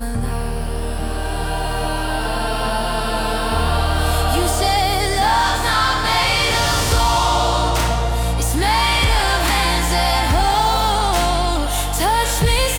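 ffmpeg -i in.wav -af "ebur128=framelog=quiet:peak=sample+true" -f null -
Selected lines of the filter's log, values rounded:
Integrated loudness:
  I:         -17.8 LUFS
  Threshold: -27.8 LUFS
Loudness range:
  LRA:         4.9 LU
  Threshold: -37.4 LUFS
  LRA low:   -21.1 LUFS
  LRA high:  -16.2 LUFS
Sample peak:
  Peak:       -6.0 dBFS
True peak:
  Peak:       -6.0 dBFS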